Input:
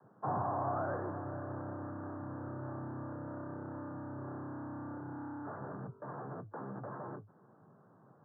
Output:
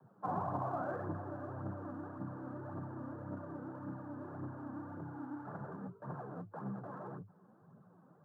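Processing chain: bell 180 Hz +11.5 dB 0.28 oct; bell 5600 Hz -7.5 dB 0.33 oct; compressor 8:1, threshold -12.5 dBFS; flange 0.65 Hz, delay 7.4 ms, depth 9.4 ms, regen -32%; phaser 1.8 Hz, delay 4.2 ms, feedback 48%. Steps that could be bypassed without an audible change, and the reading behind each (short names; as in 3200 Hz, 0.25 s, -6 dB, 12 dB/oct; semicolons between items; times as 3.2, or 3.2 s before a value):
bell 5600 Hz: input band ends at 1600 Hz; compressor, threshold -12.5 dBFS: input peak -24.0 dBFS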